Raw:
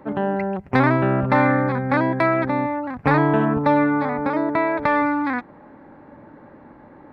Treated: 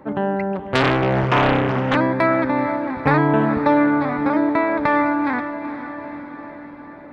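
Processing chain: diffused feedback echo 0.456 s, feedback 60%, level -11 dB; 0.55–1.96 Doppler distortion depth 0.94 ms; gain +1 dB

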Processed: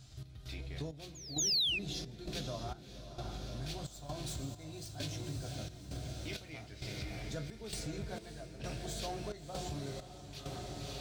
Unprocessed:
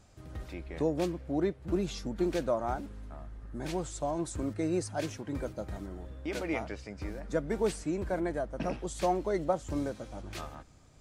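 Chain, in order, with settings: tracing distortion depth 0.026 ms; diffused feedback echo 0.57 s, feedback 63%, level -6 dB; on a send at -3 dB: reverb, pre-delay 3 ms; on the sum: painted sound fall, 1.38–1.79, 2400–7100 Hz -24 dBFS; graphic EQ 125/250/500/1000/2000/4000/8000 Hz +9/-6/-9/-9/-7/+8/-4 dB; in parallel at -7 dB: soft clip -26 dBFS, distortion -9 dB; on the sum: pre-echo 0.234 s -18 dB; step gate "x.xx..xx" 66 bpm -12 dB; compressor 3:1, threshold -36 dBFS, peak gain reduction 14 dB; low shelf 430 Hz -6 dB; gain +1 dB

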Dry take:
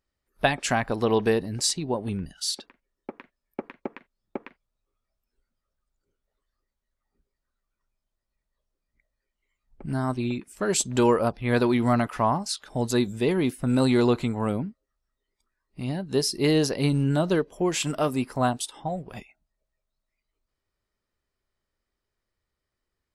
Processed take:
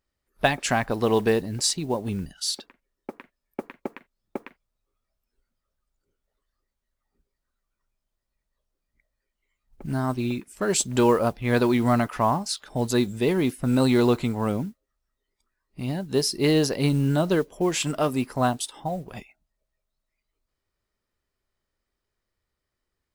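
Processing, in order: modulation noise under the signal 29 dB; gain +1 dB

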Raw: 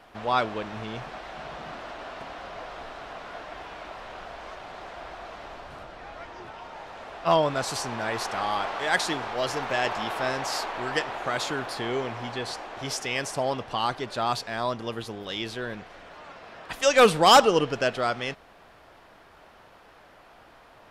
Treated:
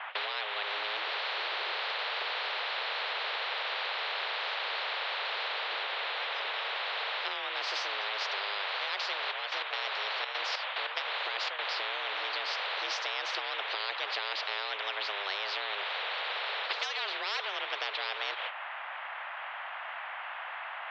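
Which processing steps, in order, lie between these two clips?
gate -48 dBFS, range -18 dB; compressor 6:1, threshold -36 dBFS, peak gain reduction 21.5 dB; 9.2–11.75 step gate "xxx.xx..x.xx" 145 bpm -12 dB; mistuned SSB +200 Hz 510–2900 Hz; spectral compressor 10:1; gain +7.5 dB

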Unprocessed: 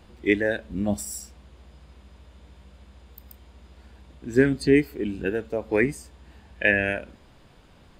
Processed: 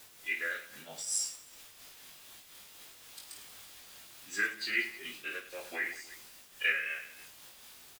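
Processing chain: treble ducked by the level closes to 2800 Hz, closed at -20.5 dBFS; tilt +3.5 dB/oct; AGC gain up to 7 dB; band-pass 4100 Hz, Q 0.63; formant-preserving pitch shift -4 st; added noise white -48 dBFS; vibrato 3.8 Hz 24 cents; reverse bouncing-ball echo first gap 20 ms, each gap 1.6×, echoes 5; noise-modulated level, depth 60%; gain -5.5 dB

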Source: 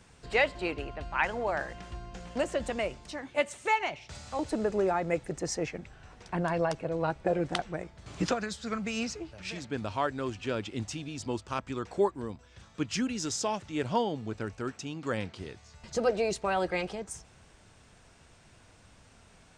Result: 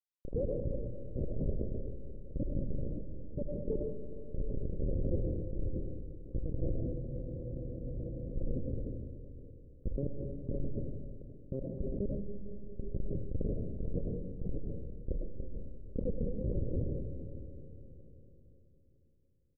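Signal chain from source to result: rattling part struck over -42 dBFS, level -24 dBFS; notches 60/120/180/240/300/360/420 Hz; in parallel at +1 dB: compressor 8:1, threshold -40 dBFS, peak gain reduction 19 dB; on the sum: HPF 93 Hz 6 dB/oct; bell 120 Hz -13.5 dB 2.1 oct; Schmitt trigger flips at -21 dBFS; Chebyshev low-pass 560 Hz, order 6; echo 0.578 s -22.5 dB; on a send at -4 dB: reverb RT60 3.6 s, pre-delay 60 ms; on the sum: spectral freeze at 6.88, 1.46 s; sustainer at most 26 dB/s; gain +2.5 dB

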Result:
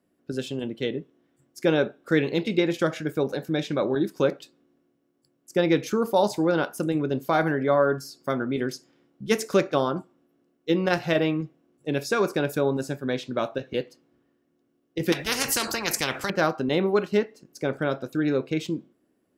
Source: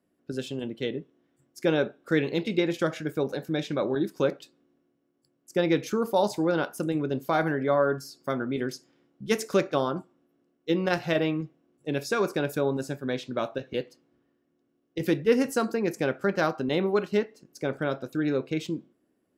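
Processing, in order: 15.12–16.3 spectral compressor 4:1; gain +2.5 dB

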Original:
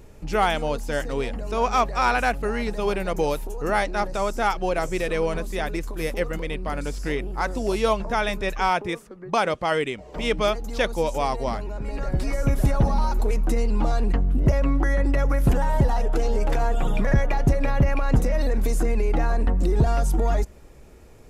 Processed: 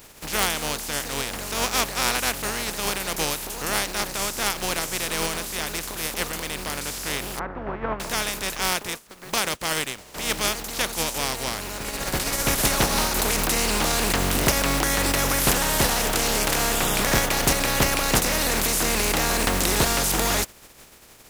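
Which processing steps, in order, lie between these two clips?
spectral contrast lowered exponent 0.32; 7.39–8 LPF 1600 Hz 24 dB/oct; gain -2.5 dB

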